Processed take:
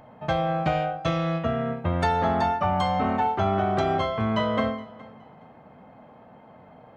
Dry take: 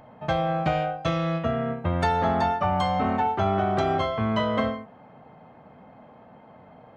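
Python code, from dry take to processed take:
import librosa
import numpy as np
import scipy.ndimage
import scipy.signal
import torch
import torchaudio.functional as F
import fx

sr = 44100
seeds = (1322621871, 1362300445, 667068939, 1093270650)

y = fx.echo_feedback(x, sr, ms=418, feedback_pct=25, wet_db=-21.5)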